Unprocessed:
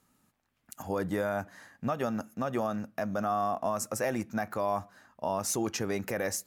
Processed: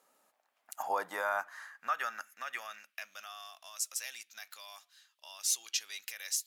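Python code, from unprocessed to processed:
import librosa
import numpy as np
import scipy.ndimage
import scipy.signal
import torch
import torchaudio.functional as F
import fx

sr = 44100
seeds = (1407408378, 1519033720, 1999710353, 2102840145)

y = fx.filter_sweep_highpass(x, sr, from_hz=550.0, to_hz=3400.0, start_s=0.15, end_s=3.52, q=2.4)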